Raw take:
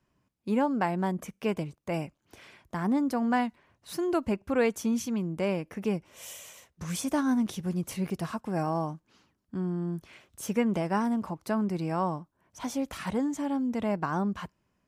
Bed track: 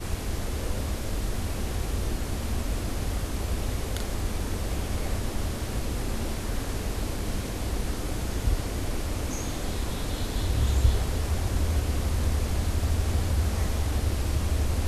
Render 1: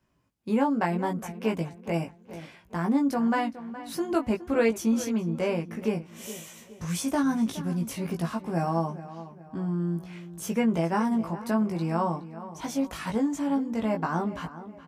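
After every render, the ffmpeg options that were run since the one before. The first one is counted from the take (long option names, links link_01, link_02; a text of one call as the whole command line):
ffmpeg -i in.wav -filter_complex "[0:a]asplit=2[link_01][link_02];[link_02]adelay=18,volume=-3dB[link_03];[link_01][link_03]amix=inputs=2:normalize=0,asplit=2[link_04][link_05];[link_05]adelay=418,lowpass=frequency=2800:poles=1,volume=-14dB,asplit=2[link_06][link_07];[link_07]adelay=418,lowpass=frequency=2800:poles=1,volume=0.42,asplit=2[link_08][link_09];[link_09]adelay=418,lowpass=frequency=2800:poles=1,volume=0.42,asplit=2[link_10][link_11];[link_11]adelay=418,lowpass=frequency=2800:poles=1,volume=0.42[link_12];[link_04][link_06][link_08][link_10][link_12]amix=inputs=5:normalize=0" out.wav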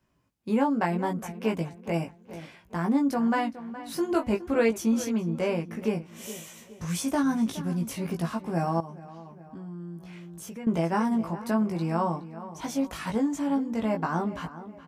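ffmpeg -i in.wav -filter_complex "[0:a]asettb=1/sr,asplit=3[link_01][link_02][link_03];[link_01]atrim=end=3.944[link_04];[link_02]atrim=start=3.94:end=4.47,asetpts=PTS-STARTPTS,afade=type=in:duration=0.004:curve=qsin,afade=type=out:start_time=0.526:duration=0.004:curve=qsin,asplit=2[link_05][link_06];[link_06]adelay=20,volume=-6.5dB[link_07];[link_05][link_07]amix=inputs=2:normalize=0,atrim=end_sample=23373[link_08];[link_03]atrim=start=4.466[link_09];[link_04][link_08]acrossfade=duration=0.004:curve1=hsin:curve2=qsin[link_10];[link_10][link_09]acrossfade=duration=0.004:curve1=qsin:curve2=hsin,asettb=1/sr,asplit=3[link_11][link_12][link_13];[link_11]atrim=end=8.804[link_14];[link_12]atrim=start=8.8:end=10.67,asetpts=PTS-STARTPTS,afade=type=in:duration=0.004:curve=qsin,afade=type=out:start_time=1.866:duration=0.004:curve=qsin,acompressor=threshold=-40dB:ratio=3:attack=3.2:release=140:knee=1:detection=peak[link_15];[link_13]atrim=start=10.666[link_16];[link_14][link_15]acrossfade=duration=0.004:curve1=hsin:curve2=qsin[link_17];[link_17][link_16]acrossfade=duration=0.004:curve1=qsin:curve2=hsin" out.wav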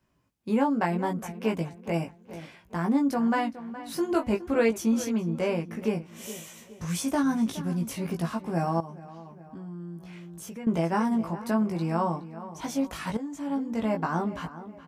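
ffmpeg -i in.wav -filter_complex "[0:a]asplit=2[link_01][link_02];[link_01]atrim=end=13.17,asetpts=PTS-STARTPTS,afade=type=out:start_time=13.166:duration=0.004:curve=hsin:silence=0.237137[link_03];[link_02]atrim=start=13.17,asetpts=PTS-STARTPTS,afade=type=in:duration=0.62:silence=0.237137[link_04];[link_03][link_04]concat=n=2:v=0:a=1" out.wav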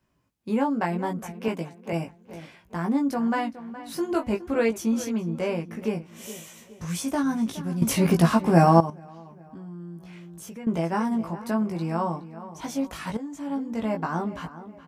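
ffmpeg -i in.wav -filter_complex "[0:a]asettb=1/sr,asplit=3[link_01][link_02][link_03];[link_01]atrim=end=1.484[link_04];[link_02]atrim=start=1.48:end=1.93,asetpts=PTS-STARTPTS,afade=type=in:duration=0.004:curve=qsin,afade=type=out:start_time=0.446:duration=0.004:curve=qsin,highpass=170[link_05];[link_03]atrim=start=1.926[link_06];[link_04][link_05]acrossfade=duration=0.004:curve1=hsin:curve2=qsin[link_07];[link_07][link_06]acrossfade=duration=0.004:curve1=qsin:curve2=hsin,asplit=3[link_08][link_09][link_10];[link_08]atrim=end=7.822[link_11];[link_09]atrim=start=7.818:end=8.902,asetpts=PTS-STARTPTS,volume=11dB[link_12];[link_10]atrim=start=8.898[link_13];[link_11][link_12]acrossfade=duration=0.004:curve1=hsin:curve2=hsin[link_14];[link_14][link_13]acrossfade=duration=0.004:curve1=hsin:curve2=hsin" out.wav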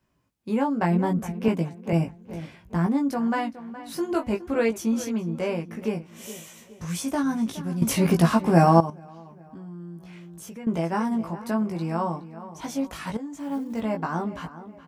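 ffmpeg -i in.wav -filter_complex "[0:a]asettb=1/sr,asplit=3[link_01][link_02][link_03];[link_01]atrim=end=0.814[link_04];[link_02]atrim=start=0.81:end=2.87,asetpts=PTS-STARTPTS,afade=type=in:duration=0.004:curve=qsin,afade=type=out:start_time=2.056:duration=0.004:curve=qsin,lowshelf=frequency=260:gain=11.5[link_05];[link_03]atrim=start=2.866[link_06];[link_04][link_05]acrossfade=duration=0.004:curve1=hsin:curve2=qsin[link_07];[link_07][link_06]acrossfade=duration=0.004:curve1=qsin:curve2=hsin,asettb=1/sr,asplit=3[link_08][link_09][link_10];[link_08]atrim=end=8.754[link_11];[link_09]atrim=start=8.75:end=9.18,asetpts=PTS-STARTPTS,afade=type=in:duration=0.004:curve=qsin,afade=type=out:start_time=0.426:duration=0.004:curve=qsin,bandreject=frequency=1900:width=11[link_12];[link_10]atrim=start=9.176[link_13];[link_11][link_12]acrossfade=duration=0.004:curve1=hsin:curve2=qsin[link_14];[link_14][link_13]acrossfade=duration=0.004:curve1=qsin:curve2=hsin,asettb=1/sr,asplit=3[link_15][link_16][link_17];[link_15]atrim=end=13.354[link_18];[link_16]atrim=start=13.35:end=13.81,asetpts=PTS-STARTPTS,afade=type=in:duration=0.004:curve=qsin,afade=type=out:start_time=0.456:duration=0.004:curve=qsin,acrusher=bits=8:mode=log:mix=0:aa=0.000001[link_19];[link_17]atrim=start=13.806[link_20];[link_18][link_19]acrossfade=duration=0.004:curve1=hsin:curve2=qsin[link_21];[link_21][link_20]acrossfade=duration=0.004:curve1=qsin:curve2=hsin" out.wav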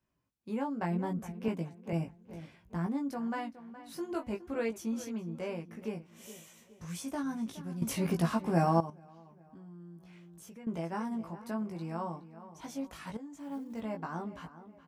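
ffmpeg -i in.wav -af "volume=-10.5dB" out.wav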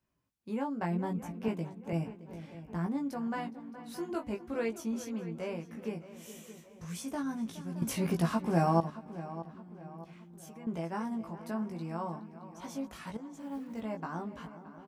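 ffmpeg -i in.wav -filter_complex "[0:a]asplit=2[link_01][link_02];[link_02]adelay=620,lowpass=frequency=3100:poles=1,volume=-14.5dB,asplit=2[link_03][link_04];[link_04]adelay=620,lowpass=frequency=3100:poles=1,volume=0.47,asplit=2[link_05][link_06];[link_06]adelay=620,lowpass=frequency=3100:poles=1,volume=0.47,asplit=2[link_07][link_08];[link_08]adelay=620,lowpass=frequency=3100:poles=1,volume=0.47[link_09];[link_01][link_03][link_05][link_07][link_09]amix=inputs=5:normalize=0" out.wav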